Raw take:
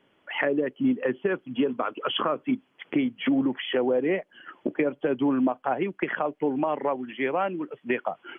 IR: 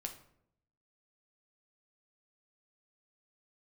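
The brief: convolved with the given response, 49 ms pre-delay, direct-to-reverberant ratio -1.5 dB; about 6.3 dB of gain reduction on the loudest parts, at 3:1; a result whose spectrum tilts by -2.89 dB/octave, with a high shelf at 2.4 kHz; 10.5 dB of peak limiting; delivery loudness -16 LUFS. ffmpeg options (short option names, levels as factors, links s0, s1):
-filter_complex "[0:a]highshelf=f=2400:g=4.5,acompressor=threshold=0.0398:ratio=3,alimiter=level_in=1.19:limit=0.0631:level=0:latency=1,volume=0.841,asplit=2[s0][s1];[1:a]atrim=start_sample=2205,adelay=49[s2];[s1][s2]afir=irnorm=-1:irlink=0,volume=1.5[s3];[s0][s3]amix=inputs=2:normalize=0,volume=5.96"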